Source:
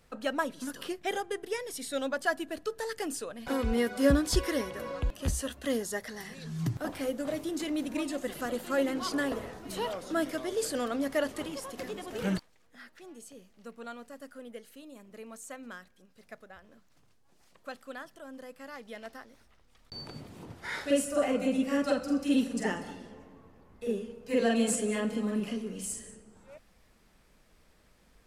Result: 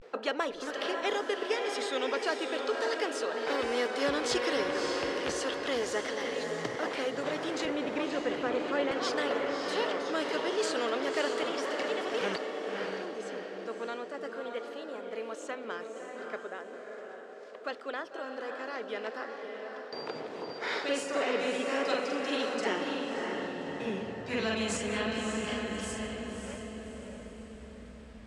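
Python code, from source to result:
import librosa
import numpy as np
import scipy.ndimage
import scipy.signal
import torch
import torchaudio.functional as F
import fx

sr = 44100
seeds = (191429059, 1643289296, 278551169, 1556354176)

y = fx.filter_sweep_highpass(x, sr, from_hz=430.0, to_hz=65.0, start_s=22.4, end_s=25.03, q=5.5)
y = fx.riaa(y, sr, side='playback', at=(7.65, 8.91))
y = fx.vibrato(y, sr, rate_hz=0.36, depth_cents=65.0)
y = fx.air_absorb(y, sr, metres=140.0)
y = fx.echo_diffused(y, sr, ms=592, feedback_pct=42, wet_db=-7)
y = fx.spectral_comp(y, sr, ratio=2.0)
y = y * 10.0 ** (-7.0 / 20.0)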